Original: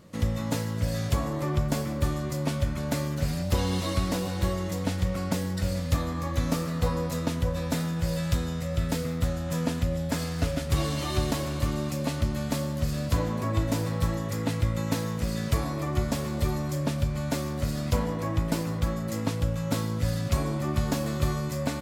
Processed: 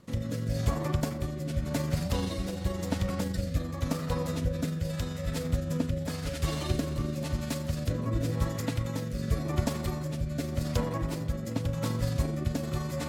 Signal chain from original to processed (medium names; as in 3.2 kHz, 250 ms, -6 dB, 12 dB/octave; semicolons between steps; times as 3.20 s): granular stretch 0.6×, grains 86 ms; rotary cabinet horn 0.9 Hz